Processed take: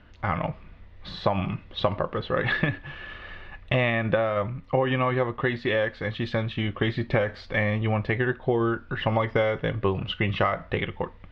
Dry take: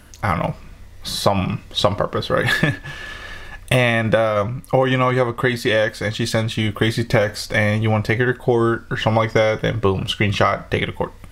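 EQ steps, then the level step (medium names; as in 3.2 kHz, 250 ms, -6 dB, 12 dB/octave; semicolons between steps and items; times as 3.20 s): low-pass 3.4 kHz 24 dB/octave; -7.0 dB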